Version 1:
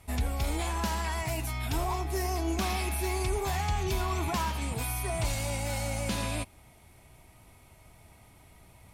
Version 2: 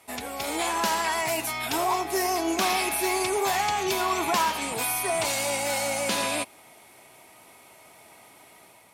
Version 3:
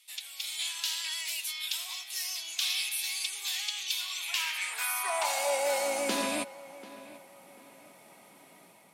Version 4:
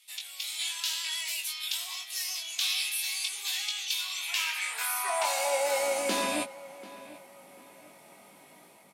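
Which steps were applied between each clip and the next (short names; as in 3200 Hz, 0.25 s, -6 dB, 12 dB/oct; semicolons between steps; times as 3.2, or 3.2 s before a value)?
HPF 350 Hz 12 dB/oct; AGC gain up to 4.5 dB; gain +4 dB
high-pass sweep 3400 Hz -> 180 Hz, 4.19–6.45; darkening echo 0.74 s, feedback 38%, low-pass 2500 Hz, level -16.5 dB; gain -5 dB
doubler 20 ms -5 dB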